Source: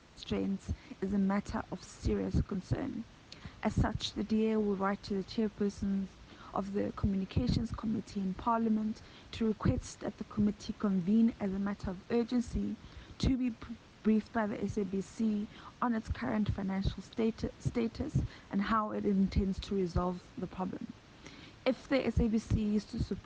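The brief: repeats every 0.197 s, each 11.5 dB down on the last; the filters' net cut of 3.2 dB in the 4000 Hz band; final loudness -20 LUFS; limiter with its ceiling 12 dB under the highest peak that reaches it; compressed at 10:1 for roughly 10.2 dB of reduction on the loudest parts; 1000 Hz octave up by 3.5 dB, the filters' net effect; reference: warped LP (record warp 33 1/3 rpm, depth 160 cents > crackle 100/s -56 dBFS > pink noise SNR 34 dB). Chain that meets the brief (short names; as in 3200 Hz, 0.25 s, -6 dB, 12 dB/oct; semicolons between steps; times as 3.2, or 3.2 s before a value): bell 1000 Hz +4.5 dB; bell 4000 Hz -4 dB; compressor 10:1, threshold -34 dBFS; limiter -31 dBFS; feedback echo 0.197 s, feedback 27%, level -11.5 dB; record warp 33 1/3 rpm, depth 160 cents; crackle 100/s -56 dBFS; pink noise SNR 34 dB; gain +21.5 dB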